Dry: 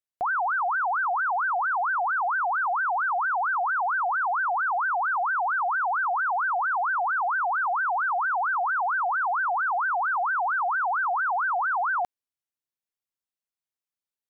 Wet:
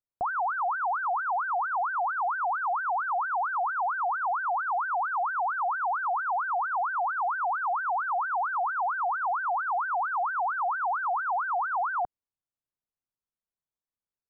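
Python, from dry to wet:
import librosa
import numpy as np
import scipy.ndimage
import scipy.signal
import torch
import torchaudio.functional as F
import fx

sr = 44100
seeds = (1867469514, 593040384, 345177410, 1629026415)

y = scipy.signal.sosfilt(scipy.signal.butter(4, 1400.0, 'lowpass', fs=sr, output='sos'), x)
y = fx.low_shelf(y, sr, hz=170.0, db=9.0)
y = F.gain(torch.from_numpy(y), -2.0).numpy()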